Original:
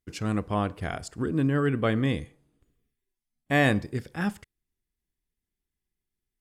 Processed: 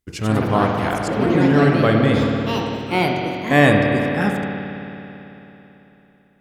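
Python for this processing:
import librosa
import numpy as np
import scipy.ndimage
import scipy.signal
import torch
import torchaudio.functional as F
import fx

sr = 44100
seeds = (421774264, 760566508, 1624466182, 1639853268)

y = fx.rev_spring(x, sr, rt60_s=3.5, pass_ms=(55,), chirp_ms=25, drr_db=1.0)
y = fx.echo_pitch(y, sr, ms=128, semitones=4, count=3, db_per_echo=-6.0)
y = fx.dynamic_eq(y, sr, hz=750.0, q=0.71, threshold_db=-35.0, ratio=4.0, max_db=3)
y = y * librosa.db_to_amplitude(6.0)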